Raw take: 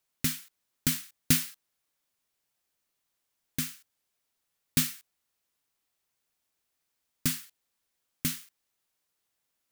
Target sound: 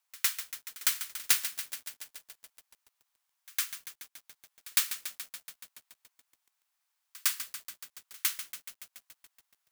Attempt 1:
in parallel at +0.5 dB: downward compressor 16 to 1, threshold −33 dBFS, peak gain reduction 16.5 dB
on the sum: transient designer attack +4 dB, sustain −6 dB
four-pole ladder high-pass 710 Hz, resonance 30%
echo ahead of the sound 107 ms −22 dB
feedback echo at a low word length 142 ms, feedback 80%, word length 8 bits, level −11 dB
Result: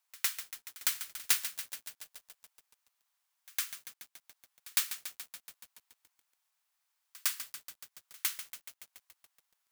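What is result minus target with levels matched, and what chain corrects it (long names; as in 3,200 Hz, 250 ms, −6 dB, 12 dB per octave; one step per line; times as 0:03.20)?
downward compressor: peak gain reduction +11 dB
in parallel at +0.5 dB: downward compressor 16 to 1, threshold −21.5 dBFS, peak gain reduction 5.5 dB
on the sum: transient designer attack +4 dB, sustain −6 dB
four-pole ladder high-pass 710 Hz, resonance 30%
echo ahead of the sound 107 ms −22 dB
feedback echo at a low word length 142 ms, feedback 80%, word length 8 bits, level −11 dB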